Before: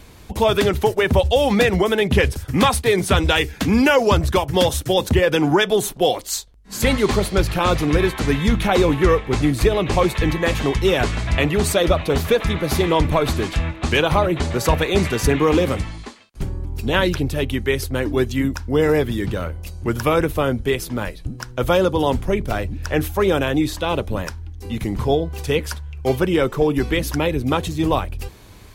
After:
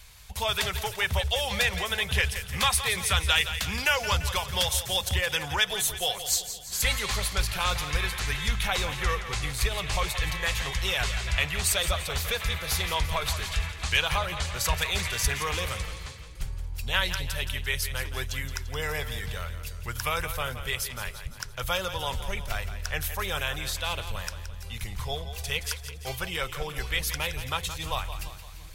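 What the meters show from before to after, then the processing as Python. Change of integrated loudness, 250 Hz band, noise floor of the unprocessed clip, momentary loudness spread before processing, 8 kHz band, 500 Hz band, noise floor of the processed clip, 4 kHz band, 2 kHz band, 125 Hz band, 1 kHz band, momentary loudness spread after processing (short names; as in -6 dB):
-9.0 dB, -23.0 dB, -41 dBFS, 10 LU, 0.0 dB, -18.0 dB, -41 dBFS, -1.5 dB, -4.0 dB, -10.5 dB, -9.5 dB, 11 LU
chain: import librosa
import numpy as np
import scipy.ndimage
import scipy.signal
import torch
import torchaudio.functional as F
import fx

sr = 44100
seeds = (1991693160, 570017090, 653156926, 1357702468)

y = fx.tone_stack(x, sr, knobs='10-0-10')
y = fx.echo_split(y, sr, split_hz=370.0, low_ms=391, high_ms=171, feedback_pct=52, wet_db=-11.0)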